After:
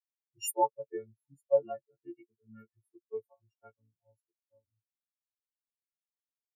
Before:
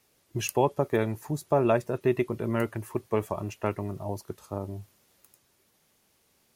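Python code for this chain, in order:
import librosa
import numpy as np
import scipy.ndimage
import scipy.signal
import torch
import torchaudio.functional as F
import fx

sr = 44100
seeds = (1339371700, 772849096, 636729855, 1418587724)

y = fx.freq_snap(x, sr, grid_st=4)
y = fx.notch_comb(y, sr, f0_hz=180.0, at=(1.59, 2.77))
y = fx.spectral_expand(y, sr, expansion=4.0)
y = y * 10.0 ** (-5.5 / 20.0)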